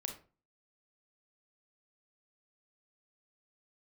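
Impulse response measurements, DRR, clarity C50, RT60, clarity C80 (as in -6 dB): 3.5 dB, 8.0 dB, 0.35 s, 14.5 dB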